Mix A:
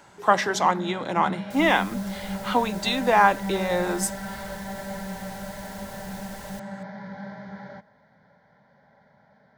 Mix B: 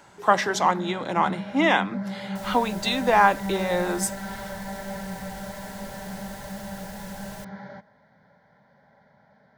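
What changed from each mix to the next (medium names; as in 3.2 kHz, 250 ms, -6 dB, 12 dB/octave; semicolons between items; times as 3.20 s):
second sound: entry +0.85 s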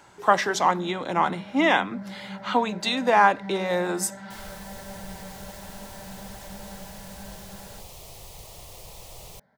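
first sound -6.5 dB; second sound: entry +1.95 s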